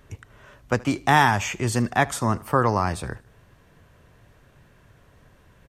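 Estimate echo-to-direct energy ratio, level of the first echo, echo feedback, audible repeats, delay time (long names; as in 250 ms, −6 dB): −22.0 dB, −23.0 dB, 47%, 2, 76 ms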